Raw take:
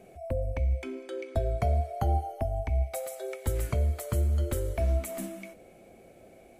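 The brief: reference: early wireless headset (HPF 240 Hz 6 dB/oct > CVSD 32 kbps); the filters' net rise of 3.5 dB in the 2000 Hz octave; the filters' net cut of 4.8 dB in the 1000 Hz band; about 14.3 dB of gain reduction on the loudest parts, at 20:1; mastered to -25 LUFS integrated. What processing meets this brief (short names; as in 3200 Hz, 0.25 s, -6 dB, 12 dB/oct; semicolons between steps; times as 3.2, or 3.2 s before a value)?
bell 1000 Hz -8.5 dB; bell 2000 Hz +6 dB; compressor 20:1, threshold -37 dBFS; HPF 240 Hz 6 dB/oct; CVSD 32 kbps; gain +22 dB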